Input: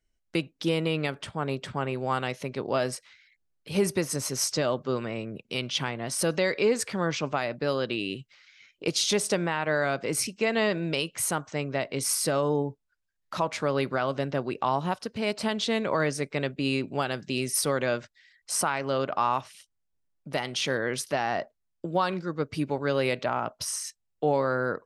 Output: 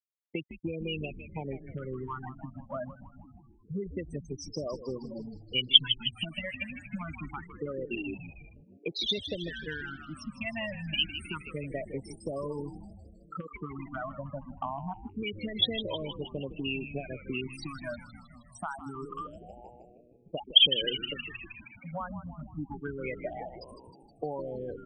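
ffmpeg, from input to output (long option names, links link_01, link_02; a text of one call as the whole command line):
ffmpeg -i in.wav -filter_complex "[0:a]afftfilt=real='re*gte(hypot(re,im),0.126)':imag='im*gte(hypot(re,im),0.126)':win_size=1024:overlap=0.75,acompressor=threshold=-32dB:ratio=10,lowpass=frequency=3200:width_type=q:width=12,asplit=9[link_01][link_02][link_03][link_04][link_05][link_06][link_07][link_08][link_09];[link_02]adelay=157,afreqshift=-120,volume=-11dB[link_10];[link_03]adelay=314,afreqshift=-240,volume=-14.7dB[link_11];[link_04]adelay=471,afreqshift=-360,volume=-18.5dB[link_12];[link_05]adelay=628,afreqshift=-480,volume=-22.2dB[link_13];[link_06]adelay=785,afreqshift=-600,volume=-26dB[link_14];[link_07]adelay=942,afreqshift=-720,volume=-29.7dB[link_15];[link_08]adelay=1099,afreqshift=-840,volume=-33.5dB[link_16];[link_09]adelay=1256,afreqshift=-960,volume=-37.2dB[link_17];[link_01][link_10][link_11][link_12][link_13][link_14][link_15][link_16][link_17]amix=inputs=9:normalize=0,afftfilt=real='re*(1-between(b*sr/1024,370*pow(1700/370,0.5+0.5*sin(2*PI*0.26*pts/sr))/1.41,370*pow(1700/370,0.5+0.5*sin(2*PI*0.26*pts/sr))*1.41))':imag='im*(1-between(b*sr/1024,370*pow(1700/370,0.5+0.5*sin(2*PI*0.26*pts/sr))/1.41,370*pow(1700/370,0.5+0.5*sin(2*PI*0.26*pts/sr))*1.41))':win_size=1024:overlap=0.75" out.wav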